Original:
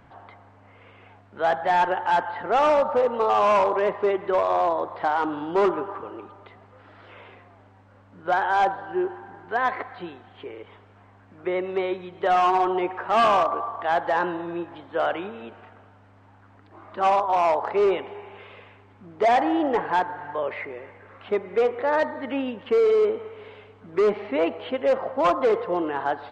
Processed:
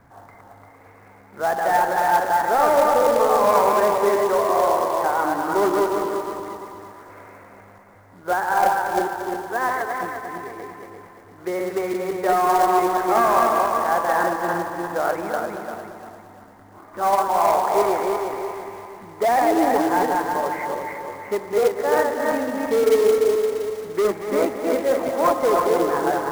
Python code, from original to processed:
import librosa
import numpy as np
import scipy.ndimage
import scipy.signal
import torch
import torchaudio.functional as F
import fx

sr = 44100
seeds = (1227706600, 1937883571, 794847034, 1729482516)

y = fx.reverse_delay_fb(x, sr, ms=173, feedback_pct=64, wet_db=-2)
y = scipy.signal.sosfilt(scipy.signal.butter(8, 2200.0, 'lowpass', fs=sr, output='sos'), y)
y = fx.quant_float(y, sr, bits=2)
y = fx.echo_feedback(y, sr, ms=231, feedback_pct=56, wet_db=-10.5)